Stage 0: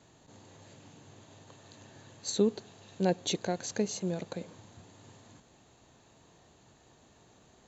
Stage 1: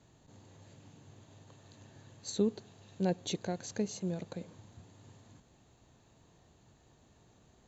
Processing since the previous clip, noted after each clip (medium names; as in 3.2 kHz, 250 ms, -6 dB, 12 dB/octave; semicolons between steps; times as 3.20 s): bass shelf 180 Hz +9 dB; trim -6 dB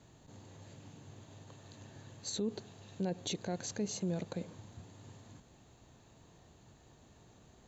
peak limiter -30.5 dBFS, peak gain reduction 11.5 dB; trim +3 dB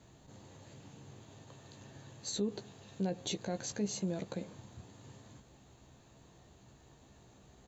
doubling 15 ms -8 dB